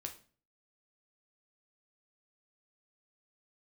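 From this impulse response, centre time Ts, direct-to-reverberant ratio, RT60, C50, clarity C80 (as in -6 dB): 12 ms, 3.5 dB, 0.40 s, 12.0 dB, 17.5 dB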